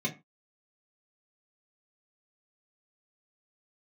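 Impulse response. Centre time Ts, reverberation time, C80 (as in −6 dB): 12 ms, 0.25 s, 21.5 dB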